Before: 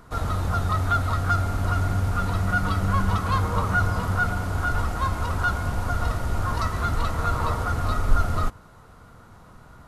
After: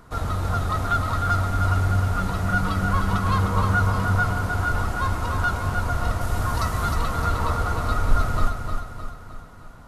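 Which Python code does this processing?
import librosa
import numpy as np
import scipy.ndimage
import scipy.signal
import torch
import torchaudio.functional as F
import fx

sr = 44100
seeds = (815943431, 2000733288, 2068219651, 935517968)

y = fx.high_shelf(x, sr, hz=6700.0, db=8.5, at=(6.21, 6.95))
y = fx.echo_feedback(y, sr, ms=307, feedback_pct=50, wet_db=-6.0)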